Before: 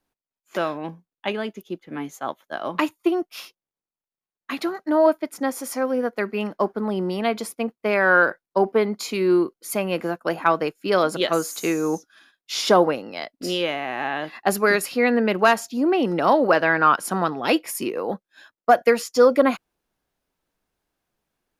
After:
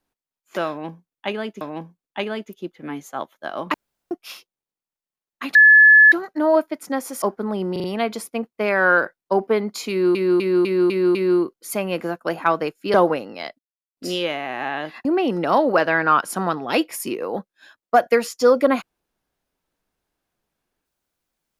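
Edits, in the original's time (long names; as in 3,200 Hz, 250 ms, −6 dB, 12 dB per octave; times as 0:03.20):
0:00.69–0:01.61: repeat, 2 plays
0:02.82–0:03.19: fill with room tone
0:04.63: insert tone 1,720 Hz −6.5 dBFS 0.57 s
0:05.73–0:06.59: remove
0:07.09: stutter 0.04 s, 4 plays
0:09.15–0:09.40: repeat, 6 plays
0:10.94–0:12.71: remove
0:13.36: splice in silence 0.38 s
0:14.44–0:15.80: remove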